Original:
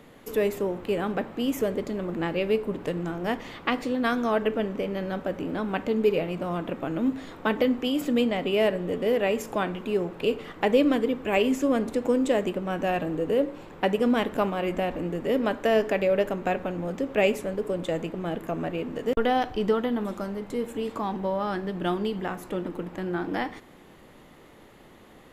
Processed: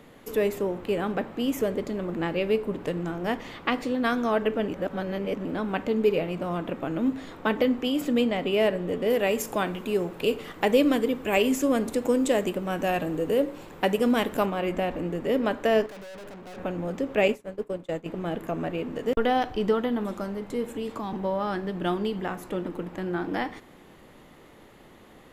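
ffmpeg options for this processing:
-filter_complex "[0:a]asettb=1/sr,asplit=3[a][b][c];[a]atrim=end=9.104[d];[b]atrim=start=9.1:end=14.46,asetpts=PTS-STARTPTS,afade=t=in:d=0.004:c=qsin,afade=t=out:st=5.356:d=0.004:c=qsin,highshelf=f=6.1k:g=11[e];[c]atrim=start=14.456[f];[d][e]acrossfade=d=0.004:c1=hsin:c2=qsin[g];[g][f]acrossfade=d=0.004:c1=qsin:c2=hsin,asettb=1/sr,asplit=3[h][i][j];[h]atrim=end=15.864[k];[i]atrim=start=15.86:end=16.58,asetpts=PTS-STARTPTS,afade=t=in:d=0.004:c=qsin,afade=t=out:st=0.716:d=0.004:c=qsin,aeval=exprs='(tanh(112*val(0)+0.25)-tanh(0.25))/112':c=same[l];[j]atrim=start=16.576[m];[k][l]acrossfade=d=0.004:c1=hsin:c2=qsin[n];[n][m]acrossfade=d=0.004:c1=qsin:c2=hsin,asettb=1/sr,asplit=3[o][p][q];[o]atrim=end=17.284[r];[p]atrim=start=17.28:end=18.06,asetpts=PTS-STARTPTS,afade=t=in:d=0.004:c=qsin,afade=t=out:st=0.776:d=0.004:c=qsin,agate=range=-33dB:threshold=-24dB:ratio=3:release=100:detection=peak[s];[q]atrim=start=18.056[t];[r][s]acrossfade=d=0.004:c1=hsin:c2=qsin[u];[u][t]acrossfade=d=0.004:c1=qsin:c2=hsin,asettb=1/sr,asplit=3[v][w][x];[v]atrim=end=20.694[y];[w]atrim=start=20.69:end=21.13,asetpts=PTS-STARTPTS,afade=t=in:d=0.004:c=qsin,afade=t=out:st=0.436:d=0.004:c=qsin,acrossover=split=240|3000[z][aa][ab];[aa]acompressor=threshold=-30dB:ratio=6:attack=3.2:release=140:knee=2.83:detection=peak[ac];[z][ac][ab]amix=inputs=3:normalize=0[ad];[x]atrim=start=21.126[ae];[y][ad]acrossfade=d=0.004:c1=hsin:c2=qsin[af];[af][ae]acrossfade=d=0.004:c1=qsin:c2=hsin,asplit=3[ag][ah][ai];[ag]atrim=end=4.682[aj];[ah]atrim=start=4.678:end=5.452,asetpts=PTS-STARTPTS,areverse[ak];[ai]atrim=start=5.448[al];[aj][ak]acrossfade=d=0.004:c1=hsin:c2=hsin[am];[am][al]acrossfade=d=0.004:c1=hsin:c2=hsin"

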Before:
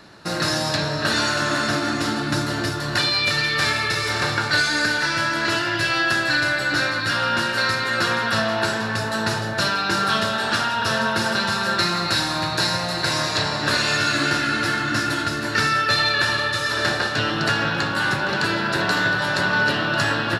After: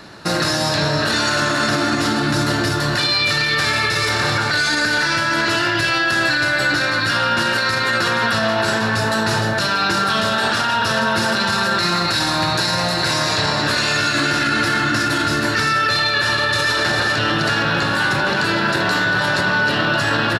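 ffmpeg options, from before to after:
-filter_complex "[0:a]asplit=2[a][b];[b]afade=t=in:st=16.12:d=0.01,afade=t=out:st=16.69:d=0.01,aecho=0:1:430|860|1290|1720|2150|2580|3010|3440|3870|4300|4730:0.446684|0.312679|0.218875|0.153212|0.107249|0.0750741|0.0525519|0.0367863|0.0257504|0.0180253|0.0126177[c];[a][c]amix=inputs=2:normalize=0,alimiter=limit=-16.5dB:level=0:latency=1:release=27,volume=7dB"

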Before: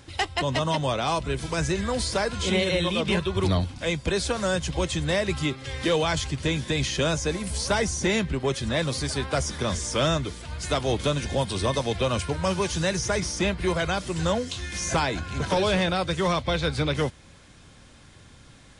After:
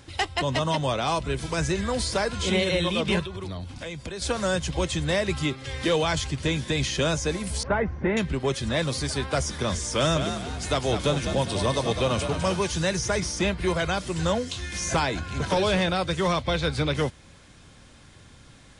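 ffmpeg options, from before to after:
-filter_complex "[0:a]asettb=1/sr,asplit=3[a][b][c];[a]atrim=end=3.254[d];[b]atrim=start=3.25:end=4.22,asetpts=PTS-STARTPTS,afade=t=in:d=0.004:c=qsin,afade=t=out:st=0.966:d=0.004:c=qsin,acompressor=threshold=-31dB:ratio=8:attack=3.2:release=140:knee=1:detection=peak[e];[c]atrim=start=4.216[f];[d][e]acrossfade=d=0.004:c1=hsin:c2=qsin[g];[g][f]acrossfade=d=0.004:c1=qsin:c2=hsin,asettb=1/sr,asplit=3[h][i][j];[h]atrim=end=7.634[k];[i]atrim=start=7.63:end=8.17,asetpts=PTS-STARTPTS,afade=t=in:d=0.004:c=qsin,afade=t=out:st=0.536:d=0.004:c=qsin,lowpass=f=2k:w=0.5412,lowpass=f=2k:w=1.3066[l];[j]atrim=start=8.166[m];[k][l]acrossfade=d=0.004:c1=hsin:c2=qsin[n];[n][m]acrossfade=d=0.004:c1=qsin:c2=hsin,asettb=1/sr,asplit=3[o][p][q];[o]atrim=end=9.804[r];[p]atrim=start=9.8:end=12.57,asetpts=PTS-STARTPTS,afade=t=in:d=0.004:c=qsin,afade=t=out:st=2.766:d=0.004:c=qsin,asplit=5[s][t][u][v][w];[t]adelay=204,afreqshift=51,volume=-7.5dB[x];[u]adelay=408,afreqshift=102,volume=-15.7dB[y];[v]adelay=612,afreqshift=153,volume=-23.9dB[z];[w]adelay=816,afreqshift=204,volume=-32dB[aa];[s][x][y][z][aa]amix=inputs=5:normalize=0,atrim=end_sample=122157[ab];[q]atrim=start=12.566[ac];[r][ab]acrossfade=d=0.004:c1=hsin:c2=qsin[ad];[ad][ac]acrossfade=d=0.004:c1=qsin:c2=hsin"

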